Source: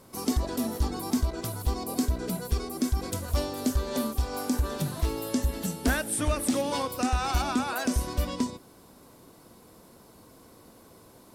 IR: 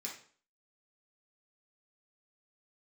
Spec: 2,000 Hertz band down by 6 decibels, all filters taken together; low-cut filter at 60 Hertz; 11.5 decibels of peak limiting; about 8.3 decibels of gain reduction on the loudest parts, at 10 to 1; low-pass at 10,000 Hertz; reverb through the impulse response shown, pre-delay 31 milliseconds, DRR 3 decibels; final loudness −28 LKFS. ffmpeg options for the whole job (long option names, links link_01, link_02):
-filter_complex "[0:a]highpass=60,lowpass=10000,equalizer=frequency=2000:width_type=o:gain=-9,acompressor=threshold=-31dB:ratio=10,alimiter=level_in=7dB:limit=-24dB:level=0:latency=1,volume=-7dB,asplit=2[link_01][link_02];[1:a]atrim=start_sample=2205,adelay=31[link_03];[link_02][link_03]afir=irnorm=-1:irlink=0,volume=-2dB[link_04];[link_01][link_04]amix=inputs=2:normalize=0,volume=10.5dB"